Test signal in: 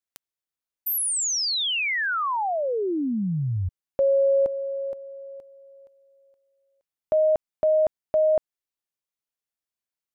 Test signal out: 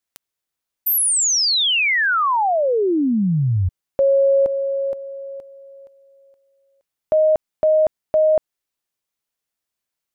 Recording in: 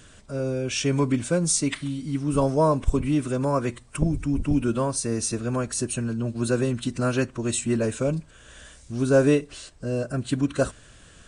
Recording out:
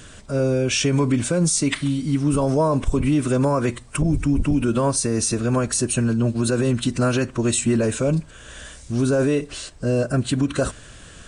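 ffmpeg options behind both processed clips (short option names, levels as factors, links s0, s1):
-af "alimiter=limit=0.112:level=0:latency=1:release=48,volume=2.37"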